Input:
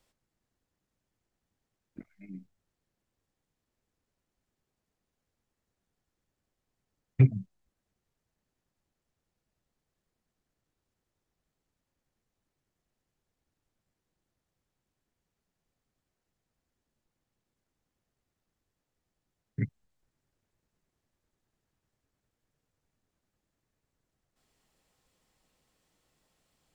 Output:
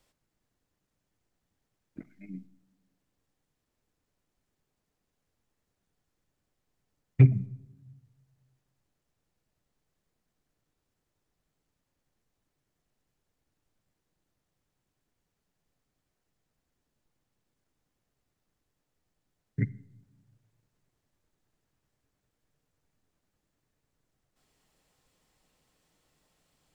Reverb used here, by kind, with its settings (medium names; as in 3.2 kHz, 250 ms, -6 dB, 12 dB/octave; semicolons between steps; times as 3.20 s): simulated room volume 3400 m³, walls furnished, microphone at 0.4 m; trim +2 dB